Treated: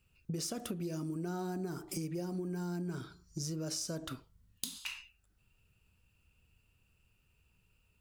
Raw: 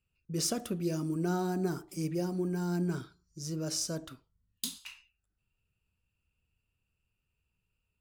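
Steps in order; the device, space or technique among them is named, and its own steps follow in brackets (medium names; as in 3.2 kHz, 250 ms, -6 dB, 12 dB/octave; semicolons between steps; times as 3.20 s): serial compression, peaks first (compression, threshold -42 dBFS, peak gain reduction 14.5 dB; compression 2:1, threshold -48 dBFS, peak gain reduction 6 dB); trim +10 dB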